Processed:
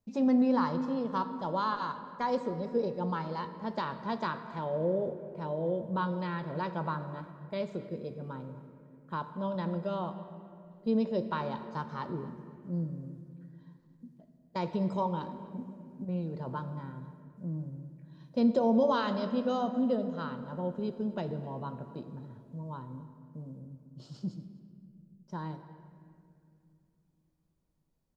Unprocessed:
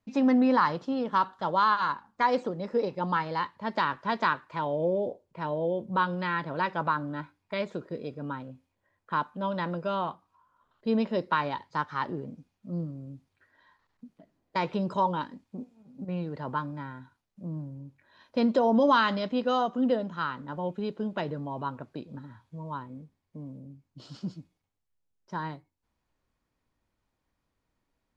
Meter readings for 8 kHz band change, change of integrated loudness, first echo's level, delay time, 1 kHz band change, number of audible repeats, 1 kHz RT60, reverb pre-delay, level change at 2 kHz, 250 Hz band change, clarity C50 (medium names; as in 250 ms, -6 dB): no reading, -4.0 dB, -20.5 dB, 253 ms, -7.0 dB, 1, 2.2 s, 3 ms, -10.5 dB, -1.5 dB, 10.0 dB